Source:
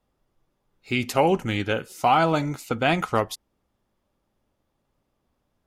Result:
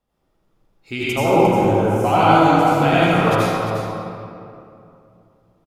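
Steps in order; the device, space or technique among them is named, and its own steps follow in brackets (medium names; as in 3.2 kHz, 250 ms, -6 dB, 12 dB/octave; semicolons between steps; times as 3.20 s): 1.03–2.05 s: high-order bell 2.7 kHz -15.5 dB; cave (delay 352 ms -9.5 dB; reverberation RT60 2.7 s, pre-delay 72 ms, DRR -10 dB); trim -3.5 dB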